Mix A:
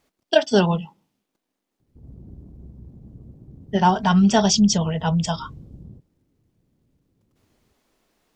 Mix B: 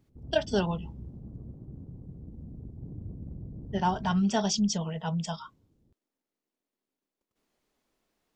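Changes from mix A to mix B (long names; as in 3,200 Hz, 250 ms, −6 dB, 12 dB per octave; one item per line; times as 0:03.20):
speech −10.0 dB
background: entry −1.80 s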